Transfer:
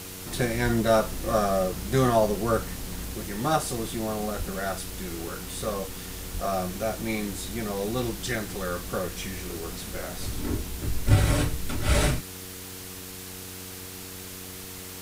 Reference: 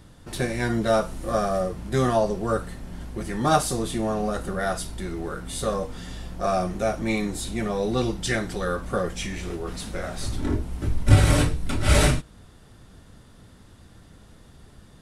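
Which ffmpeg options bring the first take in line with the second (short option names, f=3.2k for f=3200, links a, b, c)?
-filter_complex "[0:a]bandreject=f=92.9:t=h:w=4,bandreject=f=185.8:t=h:w=4,bandreject=f=278.7:t=h:w=4,bandreject=f=371.6:t=h:w=4,bandreject=f=464.5:t=h:w=4,asplit=3[a][b][c];[a]afade=t=out:st=0.64:d=0.02[d];[b]highpass=f=140:w=0.5412,highpass=f=140:w=1.3066,afade=t=in:st=0.64:d=0.02,afade=t=out:st=0.76:d=0.02[e];[c]afade=t=in:st=0.76:d=0.02[f];[d][e][f]amix=inputs=3:normalize=0,asplit=3[g][h][i];[g]afade=t=out:st=4.38:d=0.02[j];[h]highpass=f=140:w=0.5412,highpass=f=140:w=1.3066,afade=t=in:st=4.38:d=0.02,afade=t=out:st=4.5:d=0.02[k];[i]afade=t=in:st=4.5:d=0.02[l];[j][k][l]amix=inputs=3:normalize=0,asplit=3[m][n][o];[m]afade=t=out:st=6.33:d=0.02[p];[n]highpass=f=140:w=0.5412,highpass=f=140:w=1.3066,afade=t=in:st=6.33:d=0.02,afade=t=out:st=6.45:d=0.02[q];[o]afade=t=in:st=6.45:d=0.02[r];[p][q][r]amix=inputs=3:normalize=0,afwtdn=0.01,asetnsamples=n=441:p=0,asendcmd='3.14 volume volume 4.5dB',volume=0dB"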